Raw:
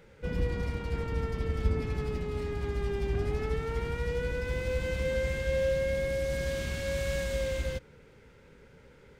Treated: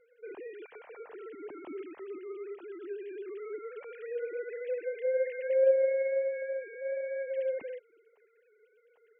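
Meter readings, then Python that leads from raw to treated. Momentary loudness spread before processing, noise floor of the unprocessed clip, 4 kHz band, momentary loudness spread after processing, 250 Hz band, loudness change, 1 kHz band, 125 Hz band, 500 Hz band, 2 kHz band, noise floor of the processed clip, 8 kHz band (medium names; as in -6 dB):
5 LU, -56 dBFS, under -20 dB, 19 LU, -10.5 dB, -1.0 dB, under -10 dB, under -40 dB, +1.5 dB, -7.5 dB, -68 dBFS, under -35 dB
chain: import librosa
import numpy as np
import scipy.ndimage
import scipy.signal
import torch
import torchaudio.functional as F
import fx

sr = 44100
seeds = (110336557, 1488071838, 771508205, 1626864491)

y = fx.sine_speech(x, sr)
y = y * librosa.db_to_amplitude(-3.0)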